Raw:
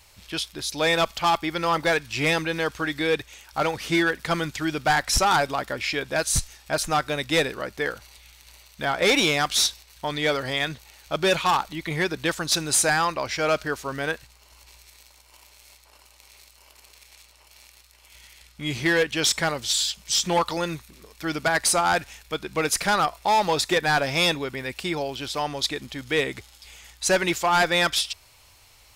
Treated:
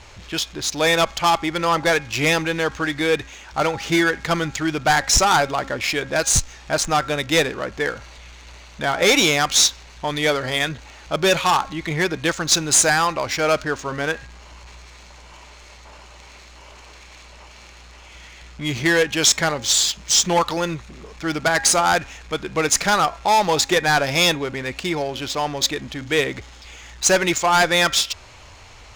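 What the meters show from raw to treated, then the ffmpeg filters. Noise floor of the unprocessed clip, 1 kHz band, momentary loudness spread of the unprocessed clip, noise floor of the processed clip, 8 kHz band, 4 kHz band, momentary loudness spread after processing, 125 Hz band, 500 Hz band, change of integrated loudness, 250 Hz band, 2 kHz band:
-55 dBFS, +4.0 dB, 10 LU, -44 dBFS, +7.5 dB, +4.5 dB, 11 LU, +4.5 dB, +4.0 dB, +4.5 dB, +4.0 dB, +4.0 dB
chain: -af "aeval=exprs='val(0)+0.5*0.0106*sgn(val(0))':c=same,equalizer=f=6700:w=3.2:g=9.5,adynamicsmooth=sensitivity=4:basefreq=2600,bandreject=f=271.7:t=h:w=4,bandreject=f=543.4:t=h:w=4,bandreject=f=815.1:t=h:w=4,bandreject=f=1086.8:t=h:w=4,bandreject=f=1358.5:t=h:w=4,bandreject=f=1630.2:t=h:w=4,bandreject=f=1901.9:t=h:w=4,bandreject=f=2173.6:t=h:w=4,bandreject=f=2445.3:t=h:w=4,volume=1.5"

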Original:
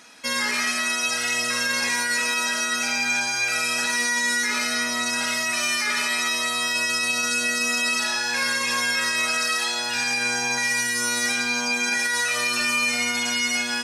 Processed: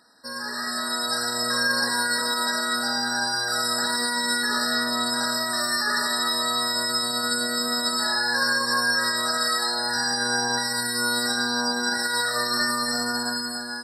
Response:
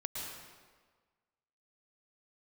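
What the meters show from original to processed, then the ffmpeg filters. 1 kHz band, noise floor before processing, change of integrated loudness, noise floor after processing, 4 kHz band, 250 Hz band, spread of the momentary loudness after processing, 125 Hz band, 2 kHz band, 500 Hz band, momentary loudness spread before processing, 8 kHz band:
+2.5 dB, -26 dBFS, -1.5 dB, -32 dBFS, +1.5 dB, +2.5 dB, 3 LU, +3.0 dB, -3.5 dB, +2.5 dB, 2 LU, -3.5 dB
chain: -af "dynaudnorm=f=200:g=7:m=3.98,afftfilt=real='re*eq(mod(floor(b*sr/1024/1900),2),0)':imag='im*eq(mod(floor(b*sr/1024/1900),2),0)':win_size=1024:overlap=0.75,volume=0.422"

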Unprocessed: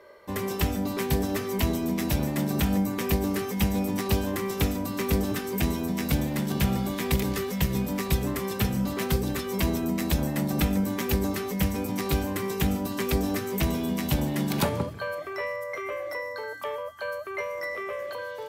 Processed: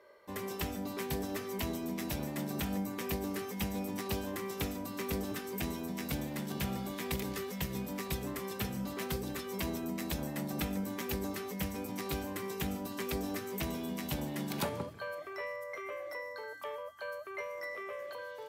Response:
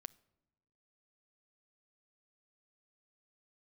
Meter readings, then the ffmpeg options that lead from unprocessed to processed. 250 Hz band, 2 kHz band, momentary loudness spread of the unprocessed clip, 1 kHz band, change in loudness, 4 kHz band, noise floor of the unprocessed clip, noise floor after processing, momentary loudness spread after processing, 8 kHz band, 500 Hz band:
-10.5 dB, -8.0 dB, 7 LU, -8.0 dB, -10.0 dB, -8.0 dB, -36 dBFS, -45 dBFS, 5 LU, -8.0 dB, -9.0 dB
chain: -af "lowshelf=f=150:g=-8,volume=0.398"

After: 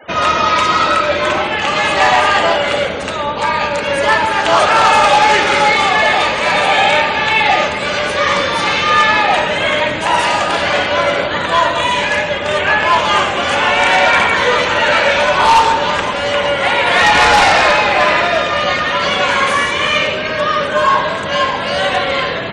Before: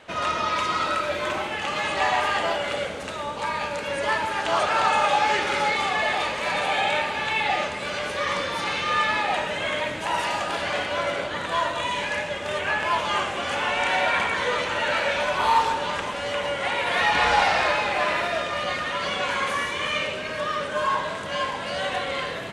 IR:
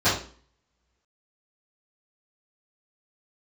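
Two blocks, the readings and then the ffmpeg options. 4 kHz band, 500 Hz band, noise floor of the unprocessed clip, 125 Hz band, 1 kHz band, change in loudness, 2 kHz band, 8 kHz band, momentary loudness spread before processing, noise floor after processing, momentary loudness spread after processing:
+12.0 dB, +12.0 dB, -32 dBFS, +12.0 dB, +11.5 dB, +11.5 dB, +11.5 dB, +11.5 dB, 7 LU, -20 dBFS, 6 LU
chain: -af "aeval=exprs='0.178*(abs(mod(val(0)/0.178+3,4)-2)-1)':c=same,acontrast=26,afftfilt=real='re*gte(hypot(re,im),0.01)':imag='im*gte(hypot(re,im),0.01)':win_size=1024:overlap=0.75,volume=2.24"

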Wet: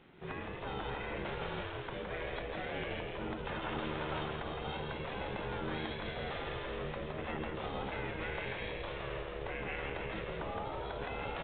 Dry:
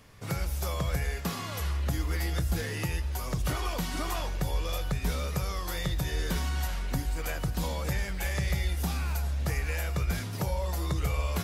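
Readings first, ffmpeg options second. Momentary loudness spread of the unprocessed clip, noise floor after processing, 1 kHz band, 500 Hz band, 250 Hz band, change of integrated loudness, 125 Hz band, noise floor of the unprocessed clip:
3 LU, -43 dBFS, -2.0 dB, -1.0 dB, -6.0 dB, -8.0 dB, -14.5 dB, -36 dBFS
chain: -filter_complex "[0:a]asplit=8[s0][s1][s2][s3][s4][s5][s6][s7];[s1]adelay=165,afreqshift=73,volume=0.631[s8];[s2]adelay=330,afreqshift=146,volume=0.335[s9];[s3]adelay=495,afreqshift=219,volume=0.178[s10];[s4]adelay=660,afreqshift=292,volume=0.0944[s11];[s5]adelay=825,afreqshift=365,volume=0.0495[s12];[s6]adelay=990,afreqshift=438,volume=0.0263[s13];[s7]adelay=1155,afreqshift=511,volume=0.014[s14];[s0][s8][s9][s10][s11][s12][s13][s14]amix=inputs=8:normalize=0,aeval=exprs='val(0)*sin(2*PI*270*n/s)':c=same,afftfilt=real='re*lt(hypot(re,im),0.126)':imag='im*lt(hypot(re,im),0.126)':win_size=1024:overlap=0.75,volume=0.75" -ar 8000 -c:a pcm_alaw

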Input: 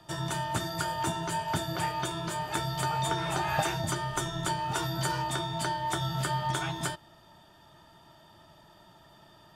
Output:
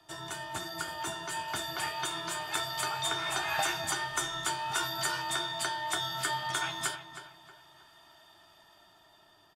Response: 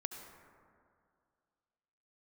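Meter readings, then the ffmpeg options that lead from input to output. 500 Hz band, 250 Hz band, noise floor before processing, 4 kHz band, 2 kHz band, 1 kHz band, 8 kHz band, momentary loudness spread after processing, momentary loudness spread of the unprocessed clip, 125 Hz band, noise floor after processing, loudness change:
-5.0 dB, -9.5 dB, -57 dBFS, +2.5 dB, +2.0 dB, -3.5 dB, +2.0 dB, 7 LU, 4 LU, -14.5 dB, -61 dBFS, -1.5 dB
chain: -filter_complex "[0:a]lowshelf=f=360:g=-9.5,aecho=1:1:2.8:0.31,acrossover=split=460|910[s0][s1][s2];[s2]dynaudnorm=f=410:g=7:m=2[s3];[s0][s1][s3]amix=inputs=3:normalize=0,flanger=delay=9.6:depth=4.9:regen=70:speed=0.33:shape=sinusoidal,asplit=2[s4][s5];[s5]adelay=316,lowpass=f=2700:p=1,volume=0.316,asplit=2[s6][s7];[s7]adelay=316,lowpass=f=2700:p=1,volume=0.38,asplit=2[s8][s9];[s9]adelay=316,lowpass=f=2700:p=1,volume=0.38,asplit=2[s10][s11];[s11]adelay=316,lowpass=f=2700:p=1,volume=0.38[s12];[s4][s6][s8][s10][s12]amix=inputs=5:normalize=0"

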